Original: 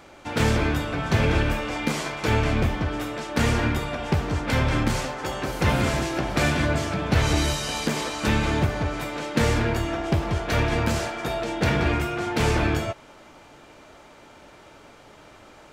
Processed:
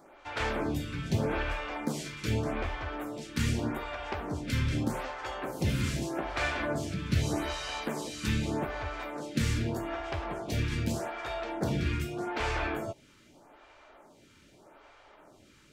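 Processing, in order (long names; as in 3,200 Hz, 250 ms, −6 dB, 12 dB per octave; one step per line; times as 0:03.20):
notch filter 480 Hz, Q 16
phaser with staggered stages 0.82 Hz
level −5 dB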